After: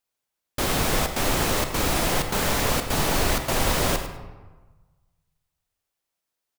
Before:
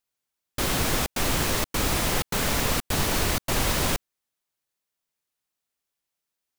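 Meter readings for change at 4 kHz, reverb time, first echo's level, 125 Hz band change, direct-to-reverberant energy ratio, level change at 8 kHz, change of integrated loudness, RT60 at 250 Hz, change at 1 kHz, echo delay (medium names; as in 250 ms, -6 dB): +1.0 dB, 1.3 s, -11.5 dB, +1.0 dB, 6.5 dB, +0.5 dB, +1.5 dB, 1.4 s, +3.5 dB, 103 ms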